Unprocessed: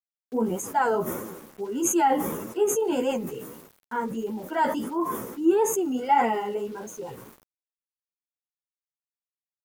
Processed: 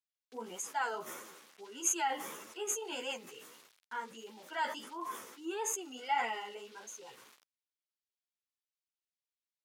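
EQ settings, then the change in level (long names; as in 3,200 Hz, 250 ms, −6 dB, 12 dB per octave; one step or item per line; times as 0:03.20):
resonant band-pass 3,700 Hz, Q 0.92
0.0 dB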